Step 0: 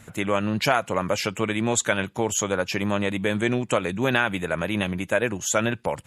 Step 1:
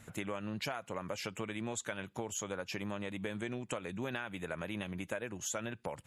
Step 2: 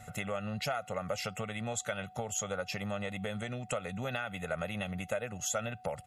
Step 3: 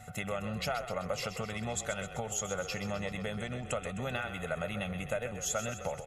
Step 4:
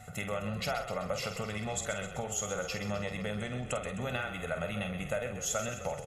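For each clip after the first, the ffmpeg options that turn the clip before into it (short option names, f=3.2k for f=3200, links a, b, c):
-af "acompressor=threshold=-28dB:ratio=6,volume=-7.5dB"
-af "aeval=exprs='val(0)+0.00112*sin(2*PI*740*n/s)':c=same,aecho=1:1:1.5:0.82,volume=1.5dB"
-filter_complex "[0:a]asplit=8[a][b][c][d][e][f][g][h];[b]adelay=129,afreqshift=-32,volume=-10dB[i];[c]adelay=258,afreqshift=-64,volume=-14.7dB[j];[d]adelay=387,afreqshift=-96,volume=-19.5dB[k];[e]adelay=516,afreqshift=-128,volume=-24.2dB[l];[f]adelay=645,afreqshift=-160,volume=-28.9dB[m];[g]adelay=774,afreqshift=-192,volume=-33.7dB[n];[h]adelay=903,afreqshift=-224,volume=-38.4dB[o];[a][i][j][k][l][m][n][o]amix=inputs=8:normalize=0"
-filter_complex "[0:a]asplit=2[a][b];[b]adelay=48,volume=-8dB[c];[a][c]amix=inputs=2:normalize=0"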